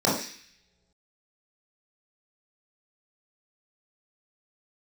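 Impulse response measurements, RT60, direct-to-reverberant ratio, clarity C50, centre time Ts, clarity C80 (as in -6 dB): no single decay rate, -7.0 dB, 3.0 dB, 44 ms, 8.0 dB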